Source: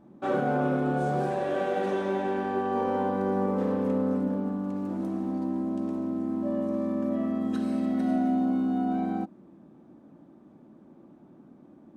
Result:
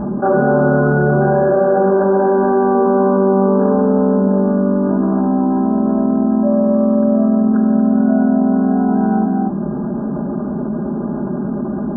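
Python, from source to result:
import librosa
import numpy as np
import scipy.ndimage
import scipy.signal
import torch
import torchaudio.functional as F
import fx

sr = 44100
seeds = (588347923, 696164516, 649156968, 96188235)

y = fx.brickwall_lowpass(x, sr, high_hz=1700.0)
y = fx.peak_eq(y, sr, hz=65.0, db=8.0, octaves=1.3)
y = y + 0.98 * np.pad(y, (int(4.9 * sr / 1000.0), 0))[:len(y)]
y = y + 10.0 ** (-7.5 / 20.0) * np.pad(y, (int(234 * sr / 1000.0), 0))[:len(y)]
y = fx.env_flatten(y, sr, amount_pct=70)
y = F.gain(torch.from_numpy(y), 7.5).numpy()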